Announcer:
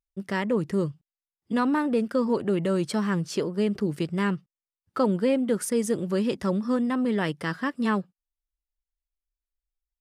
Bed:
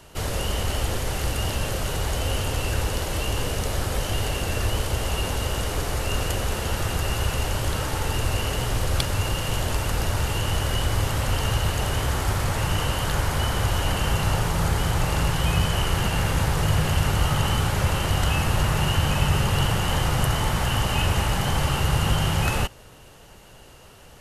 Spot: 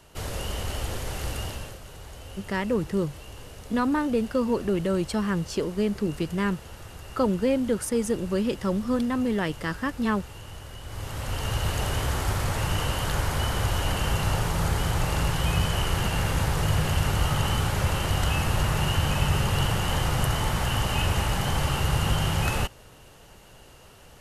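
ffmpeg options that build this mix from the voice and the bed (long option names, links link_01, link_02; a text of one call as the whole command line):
ffmpeg -i stem1.wav -i stem2.wav -filter_complex "[0:a]adelay=2200,volume=-0.5dB[link_01];[1:a]volume=9dB,afade=type=out:start_time=1.36:duration=0.43:silence=0.266073,afade=type=in:start_time=10.83:duration=0.92:silence=0.188365[link_02];[link_01][link_02]amix=inputs=2:normalize=0" out.wav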